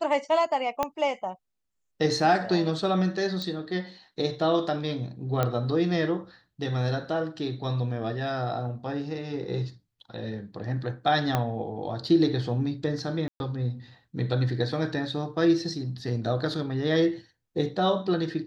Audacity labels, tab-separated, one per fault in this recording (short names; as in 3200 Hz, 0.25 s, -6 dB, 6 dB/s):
0.830000	0.830000	pop -12 dBFS
3.420000	3.420000	pop -19 dBFS
5.430000	5.430000	pop -12 dBFS
11.350000	11.350000	pop -11 dBFS
13.280000	13.400000	gap 0.121 s